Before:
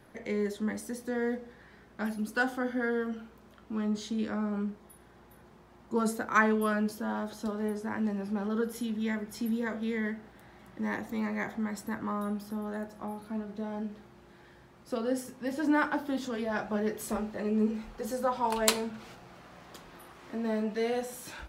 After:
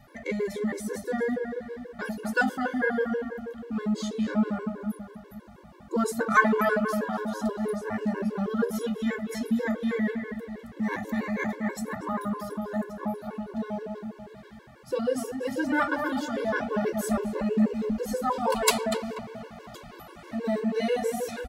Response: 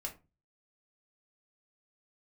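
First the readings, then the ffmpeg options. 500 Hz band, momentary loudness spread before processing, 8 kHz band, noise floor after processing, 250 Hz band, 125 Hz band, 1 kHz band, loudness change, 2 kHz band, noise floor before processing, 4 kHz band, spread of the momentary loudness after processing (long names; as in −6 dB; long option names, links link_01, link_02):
+4.5 dB, 14 LU, +2.5 dB, −49 dBFS, +3.5 dB, +4.0 dB, +4.5 dB, +3.5 dB, +4.5 dB, −57 dBFS, +3.0 dB, 13 LU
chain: -filter_complex "[0:a]asplit=2[link_01][link_02];[link_02]adelay=242,lowpass=frequency=1600:poles=1,volume=-4dB,asplit=2[link_03][link_04];[link_04]adelay=242,lowpass=frequency=1600:poles=1,volume=0.48,asplit=2[link_05][link_06];[link_06]adelay=242,lowpass=frequency=1600:poles=1,volume=0.48,asplit=2[link_07][link_08];[link_08]adelay=242,lowpass=frequency=1600:poles=1,volume=0.48,asplit=2[link_09][link_10];[link_10]adelay=242,lowpass=frequency=1600:poles=1,volume=0.48,asplit=2[link_11][link_12];[link_12]adelay=242,lowpass=frequency=1600:poles=1,volume=0.48[link_13];[link_01][link_03][link_05][link_07][link_09][link_11][link_13]amix=inputs=7:normalize=0,asplit=2[link_14][link_15];[1:a]atrim=start_sample=2205[link_16];[link_15][link_16]afir=irnorm=-1:irlink=0,volume=-7dB[link_17];[link_14][link_17]amix=inputs=2:normalize=0,afftfilt=real='re*gt(sin(2*PI*6.2*pts/sr)*(1-2*mod(floor(b*sr/1024/290),2)),0)':imag='im*gt(sin(2*PI*6.2*pts/sr)*(1-2*mod(floor(b*sr/1024/290),2)),0)':win_size=1024:overlap=0.75,volume=4.5dB"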